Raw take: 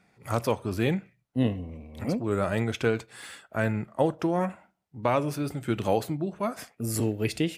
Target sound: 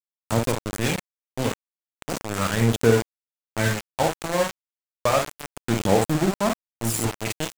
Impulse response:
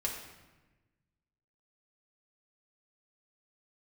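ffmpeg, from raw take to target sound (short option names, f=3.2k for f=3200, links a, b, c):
-filter_complex "[0:a]aecho=1:1:26|52:0.133|0.596,asplit=2[a][b];[1:a]atrim=start_sample=2205,atrim=end_sample=3969[c];[b][c]afir=irnorm=-1:irlink=0,volume=-15dB[d];[a][d]amix=inputs=2:normalize=0,aphaser=in_gain=1:out_gain=1:delay=2:decay=0.51:speed=0.32:type=sinusoidal,aeval=exprs='val(0)*gte(abs(val(0)),0.0841)':c=same,equalizer=f=7.6k:w=2:g=6"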